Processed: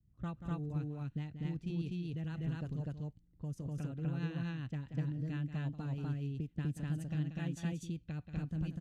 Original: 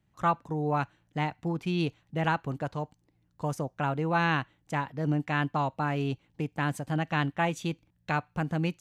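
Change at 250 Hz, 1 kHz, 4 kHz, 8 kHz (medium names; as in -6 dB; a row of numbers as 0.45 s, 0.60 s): -7.0 dB, -24.5 dB, -15.0 dB, no reading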